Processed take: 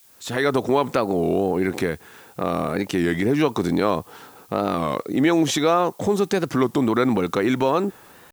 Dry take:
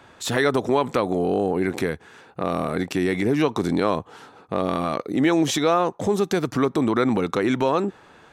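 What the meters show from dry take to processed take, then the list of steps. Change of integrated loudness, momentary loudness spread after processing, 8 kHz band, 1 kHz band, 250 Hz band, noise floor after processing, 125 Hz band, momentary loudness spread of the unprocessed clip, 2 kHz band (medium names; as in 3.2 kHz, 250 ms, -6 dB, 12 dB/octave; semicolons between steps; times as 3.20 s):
+1.0 dB, 9 LU, +0.5 dB, +1.0 dB, +1.0 dB, -50 dBFS, +1.0 dB, 8 LU, +0.5 dB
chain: fade-in on the opening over 0.54 s; added noise blue -54 dBFS; warped record 33 1/3 rpm, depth 160 cents; trim +1 dB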